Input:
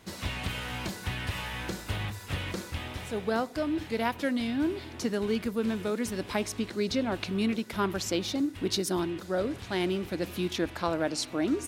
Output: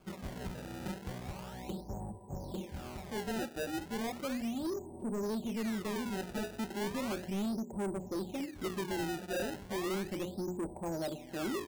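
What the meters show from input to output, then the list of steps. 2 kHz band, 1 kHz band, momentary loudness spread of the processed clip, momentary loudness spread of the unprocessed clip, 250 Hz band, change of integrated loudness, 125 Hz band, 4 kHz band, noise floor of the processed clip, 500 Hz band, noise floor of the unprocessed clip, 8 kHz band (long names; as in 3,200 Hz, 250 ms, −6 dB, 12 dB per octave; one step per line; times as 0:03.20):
−8.5 dB, −6.5 dB, 7 LU, 6 LU, −6.5 dB, −7.0 dB, −7.0 dB, −11.0 dB, −50 dBFS, −7.0 dB, −45 dBFS, −8.5 dB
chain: elliptic low-pass filter 880 Hz, stop band 40 dB
mains-hum notches 60/120/180/240/300/360/420/480/540/600 Hz
comb filter 5.2 ms, depth 61%
sample-and-hold swept by an LFO 23×, swing 160% 0.35 Hz
soft clipping −30 dBFS, distortion −9 dB
level −2 dB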